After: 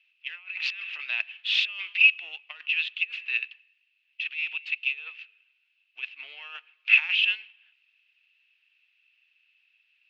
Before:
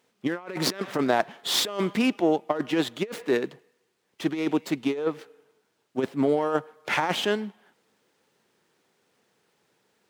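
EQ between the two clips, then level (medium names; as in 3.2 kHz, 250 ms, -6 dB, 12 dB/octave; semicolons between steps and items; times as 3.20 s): ladder band-pass 2.7 kHz, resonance 90%; distance through air 320 m; tilt EQ +4 dB/octave; +8.5 dB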